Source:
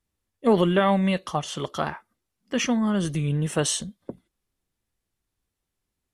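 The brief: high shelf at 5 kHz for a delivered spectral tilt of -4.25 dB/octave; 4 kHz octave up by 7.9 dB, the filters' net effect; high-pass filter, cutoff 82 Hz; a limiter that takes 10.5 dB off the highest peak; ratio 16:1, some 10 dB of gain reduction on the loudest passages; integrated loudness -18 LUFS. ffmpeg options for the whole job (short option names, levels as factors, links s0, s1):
-af "highpass=82,equalizer=f=4000:t=o:g=8,highshelf=f=5000:g=6.5,acompressor=threshold=0.0631:ratio=16,volume=5.62,alimiter=limit=0.376:level=0:latency=1"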